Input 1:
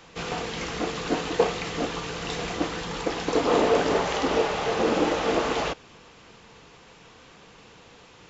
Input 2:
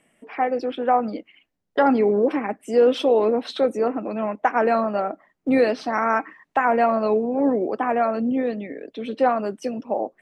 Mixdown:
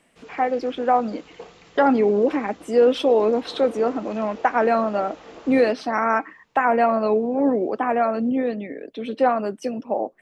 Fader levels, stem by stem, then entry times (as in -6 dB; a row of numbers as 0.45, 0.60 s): -18.5, +0.5 dB; 0.00, 0.00 s